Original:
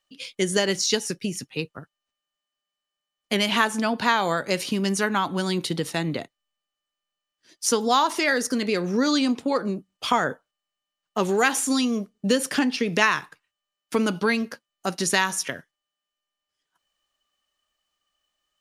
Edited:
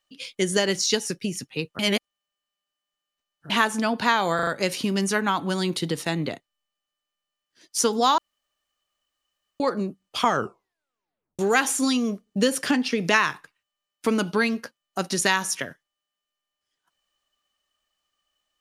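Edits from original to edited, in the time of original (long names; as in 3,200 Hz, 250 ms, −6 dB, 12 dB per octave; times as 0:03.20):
0:01.79–0:03.50: reverse
0:04.35: stutter 0.04 s, 4 plays
0:08.06–0:09.48: fill with room tone
0:10.13: tape stop 1.14 s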